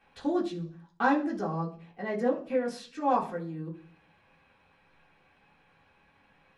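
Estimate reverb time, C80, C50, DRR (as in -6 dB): 0.45 s, 16.0 dB, 11.5 dB, -5.0 dB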